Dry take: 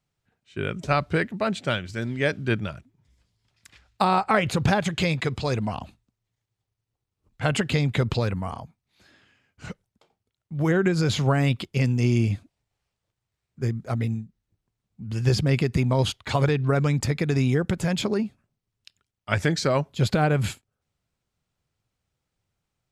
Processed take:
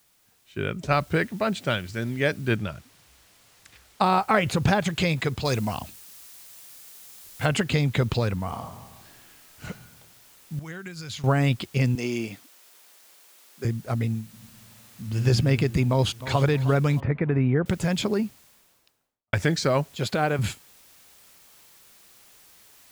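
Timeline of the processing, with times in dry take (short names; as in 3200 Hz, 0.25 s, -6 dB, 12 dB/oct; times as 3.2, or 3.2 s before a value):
0.92 noise floor step -64 dB -54 dB
2.56–4.04 high shelf 9700 Hz -9.5 dB
5.45–7.46 high shelf 3500 Hz +8.5 dB
8.45–9.67 reverb throw, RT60 1.2 s, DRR 3 dB
10.59–11.24 passive tone stack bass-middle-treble 5-5-5
11.95–13.65 HPF 320 Hz
14.22–15.25 reverb throw, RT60 2.9 s, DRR 0 dB
15.89–16.45 echo throw 0.31 s, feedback 50%, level -15 dB
17–17.66 LPF 2100 Hz 24 dB/oct
18.24–19.33 studio fade out
19.96–20.39 HPF 310 Hz 6 dB/oct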